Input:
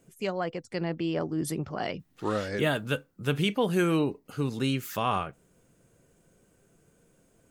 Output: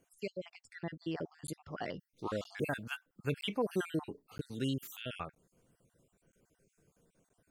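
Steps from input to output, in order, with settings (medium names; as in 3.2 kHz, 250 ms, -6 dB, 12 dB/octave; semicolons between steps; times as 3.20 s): random holes in the spectrogram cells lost 43%; crackling interface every 0.97 s, samples 512, zero, from 0.50 s; trim -6.5 dB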